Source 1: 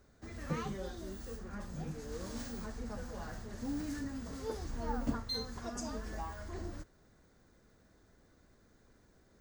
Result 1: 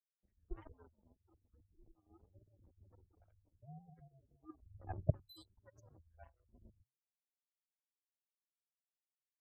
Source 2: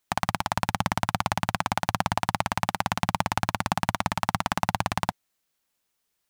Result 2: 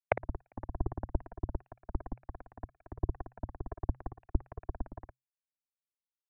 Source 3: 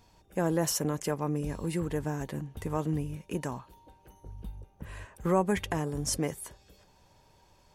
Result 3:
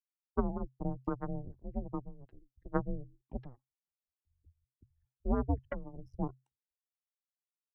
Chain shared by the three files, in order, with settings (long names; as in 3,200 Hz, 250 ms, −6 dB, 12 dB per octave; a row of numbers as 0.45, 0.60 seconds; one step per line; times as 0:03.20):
expanding power law on the bin magnitudes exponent 3.6
treble cut that deepens with the level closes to 330 Hz, closed at −25 dBFS
power curve on the samples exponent 3
frequency shifter −130 Hz
level +8 dB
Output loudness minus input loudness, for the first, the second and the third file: −5.0, −14.0, −7.0 LU